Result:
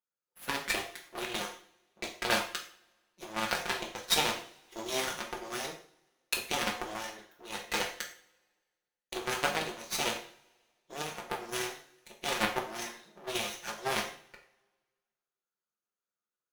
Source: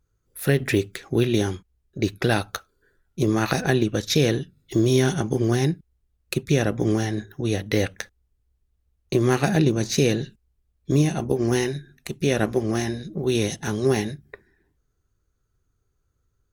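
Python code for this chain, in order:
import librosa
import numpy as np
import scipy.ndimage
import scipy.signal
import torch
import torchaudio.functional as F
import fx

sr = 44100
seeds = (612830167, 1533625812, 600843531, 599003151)

p1 = fx.lower_of_two(x, sr, delay_ms=5.6)
p2 = scipy.signal.sosfilt(scipy.signal.bessel(2, 680.0, 'highpass', norm='mag', fs=sr, output='sos'), p1)
p3 = fx.cheby_harmonics(p2, sr, harmonics=(3, 6, 7), levels_db=(-31, -28, -19), full_scale_db=-10.5)
p4 = fx.rev_double_slope(p3, sr, seeds[0], early_s=0.45, late_s=1.6, knee_db=-24, drr_db=0.5)
p5 = fx.sample_hold(p4, sr, seeds[1], rate_hz=13000.0, jitter_pct=0)
p6 = p4 + (p5 * 10.0 ** (-9.5 / 20.0))
y = fx.rider(p6, sr, range_db=3, speed_s=2.0)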